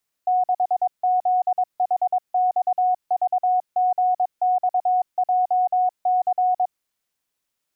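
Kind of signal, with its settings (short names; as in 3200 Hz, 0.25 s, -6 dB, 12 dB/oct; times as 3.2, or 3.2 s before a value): Morse "6ZHXVGXJC" 22 wpm 733 Hz -16 dBFS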